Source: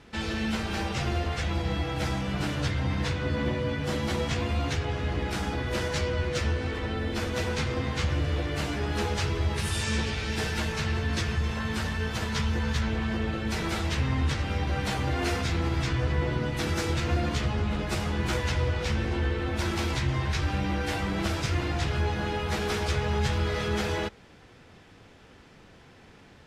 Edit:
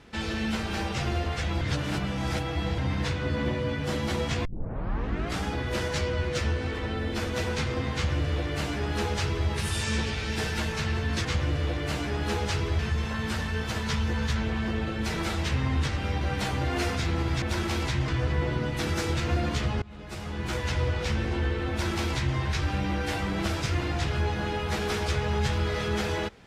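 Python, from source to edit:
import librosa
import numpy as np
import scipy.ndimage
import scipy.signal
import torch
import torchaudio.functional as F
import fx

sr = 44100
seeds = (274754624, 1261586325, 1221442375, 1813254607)

y = fx.edit(x, sr, fx.reverse_span(start_s=1.61, length_s=1.17),
    fx.tape_start(start_s=4.45, length_s=0.99),
    fx.duplicate(start_s=7.94, length_s=1.54, to_s=11.25),
    fx.fade_in_from(start_s=17.62, length_s=0.99, floor_db=-23.0),
    fx.duplicate(start_s=19.5, length_s=0.66, to_s=15.88), tone=tone)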